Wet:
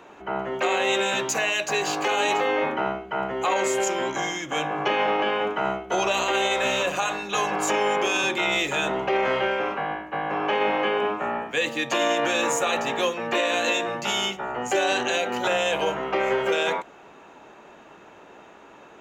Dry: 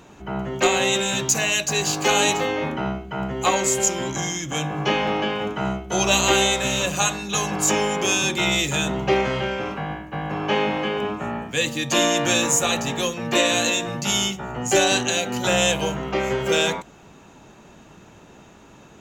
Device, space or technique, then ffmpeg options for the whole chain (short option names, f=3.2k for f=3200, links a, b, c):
DJ mixer with the lows and highs turned down: -filter_complex "[0:a]acrossover=split=320 3000:gain=0.126 1 0.224[a][b][c];[a][b][c]amix=inputs=3:normalize=0,alimiter=limit=-17.5dB:level=0:latency=1:release=34,volume=3.5dB"